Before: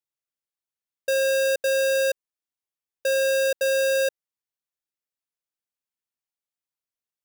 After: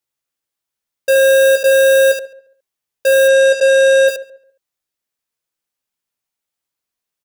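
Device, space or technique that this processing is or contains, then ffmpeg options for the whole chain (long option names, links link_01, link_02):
slapback doubling: -filter_complex "[0:a]asplit=3[link_01][link_02][link_03];[link_02]adelay=15,volume=-5.5dB[link_04];[link_03]adelay=74,volume=-6dB[link_05];[link_01][link_04][link_05]amix=inputs=3:normalize=0,asplit=3[link_06][link_07][link_08];[link_06]afade=type=out:start_time=3.27:duration=0.02[link_09];[link_07]lowpass=frequency=8500:width=0.5412,lowpass=frequency=8500:width=1.3066,afade=type=in:start_time=3.27:duration=0.02,afade=type=out:start_time=4.07:duration=0.02[link_10];[link_08]afade=type=in:start_time=4.07:duration=0.02[link_11];[link_09][link_10][link_11]amix=inputs=3:normalize=0,asplit=2[link_12][link_13];[link_13]adelay=138,lowpass=frequency=1600:poles=1,volume=-17dB,asplit=2[link_14][link_15];[link_15]adelay=138,lowpass=frequency=1600:poles=1,volume=0.27,asplit=2[link_16][link_17];[link_17]adelay=138,lowpass=frequency=1600:poles=1,volume=0.27[link_18];[link_12][link_14][link_16][link_18]amix=inputs=4:normalize=0,volume=8dB"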